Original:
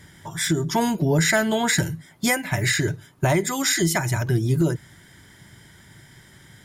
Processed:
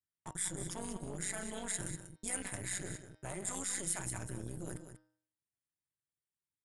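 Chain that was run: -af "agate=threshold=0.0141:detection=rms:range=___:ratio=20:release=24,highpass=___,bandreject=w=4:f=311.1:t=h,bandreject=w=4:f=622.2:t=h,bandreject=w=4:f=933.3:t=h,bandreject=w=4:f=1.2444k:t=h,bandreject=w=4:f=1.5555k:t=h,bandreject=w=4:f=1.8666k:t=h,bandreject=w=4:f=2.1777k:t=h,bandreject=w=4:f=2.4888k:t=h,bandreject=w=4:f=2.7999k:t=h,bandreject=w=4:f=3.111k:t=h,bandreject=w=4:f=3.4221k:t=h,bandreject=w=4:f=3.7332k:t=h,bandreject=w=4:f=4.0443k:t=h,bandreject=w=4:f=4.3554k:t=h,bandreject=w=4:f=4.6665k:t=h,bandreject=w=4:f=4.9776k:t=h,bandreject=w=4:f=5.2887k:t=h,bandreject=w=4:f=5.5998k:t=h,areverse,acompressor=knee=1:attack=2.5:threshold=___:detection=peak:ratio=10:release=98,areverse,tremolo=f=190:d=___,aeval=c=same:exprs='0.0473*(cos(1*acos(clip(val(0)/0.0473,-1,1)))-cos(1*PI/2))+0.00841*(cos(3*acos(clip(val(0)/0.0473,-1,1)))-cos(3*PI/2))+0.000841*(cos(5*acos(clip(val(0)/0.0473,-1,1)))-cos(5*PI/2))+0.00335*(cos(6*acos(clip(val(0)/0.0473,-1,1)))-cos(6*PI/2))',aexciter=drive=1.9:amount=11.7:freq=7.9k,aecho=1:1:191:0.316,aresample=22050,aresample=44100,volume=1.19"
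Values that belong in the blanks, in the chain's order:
0.00355, 43, 0.0178, 0.75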